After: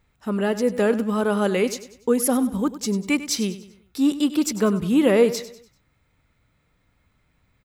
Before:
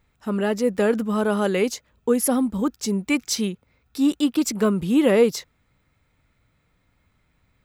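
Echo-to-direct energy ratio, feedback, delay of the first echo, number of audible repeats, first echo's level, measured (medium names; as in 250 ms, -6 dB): -13.5 dB, 42%, 97 ms, 3, -14.5 dB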